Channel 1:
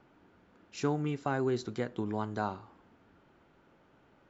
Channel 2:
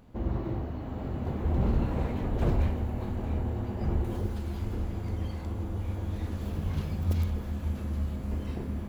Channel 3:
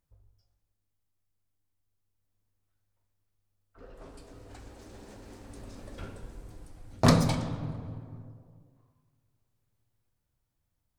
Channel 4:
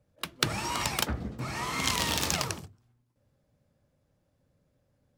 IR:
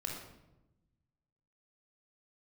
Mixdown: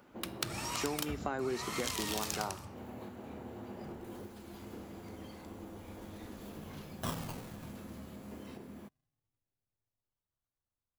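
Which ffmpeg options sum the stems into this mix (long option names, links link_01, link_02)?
-filter_complex "[0:a]highpass=250,volume=1.5dB,asplit=2[link_01][link_02];[1:a]highpass=210,alimiter=level_in=5.5dB:limit=-24dB:level=0:latency=1:release=396,volume=-5.5dB,volume=-6.5dB[link_03];[2:a]equalizer=frequency=1300:width_type=o:width=1:gain=8,acrusher=samples=34:mix=1:aa=0.000001:lfo=1:lforange=34:lforate=0.26,volume=-16.5dB[link_04];[3:a]volume=-8dB,asplit=2[link_05][link_06];[link_06]volume=-10dB[link_07];[link_02]apad=whole_len=392027[link_08];[link_03][link_08]sidechaincompress=threshold=-48dB:ratio=8:attack=5.4:release=204[link_09];[4:a]atrim=start_sample=2205[link_10];[link_07][link_10]afir=irnorm=-1:irlink=0[link_11];[link_01][link_09][link_04][link_05][link_11]amix=inputs=5:normalize=0,highshelf=frequency=6500:gain=7.5,acompressor=threshold=-33dB:ratio=3"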